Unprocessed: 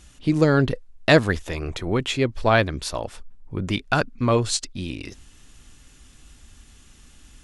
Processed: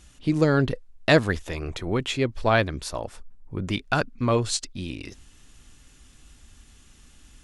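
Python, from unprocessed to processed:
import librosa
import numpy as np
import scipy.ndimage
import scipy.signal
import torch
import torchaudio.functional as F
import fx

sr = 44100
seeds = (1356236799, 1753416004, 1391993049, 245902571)

y = fx.peak_eq(x, sr, hz=3200.0, db=-4.0, octaves=1.2, at=(2.82, 3.58))
y = F.gain(torch.from_numpy(y), -2.5).numpy()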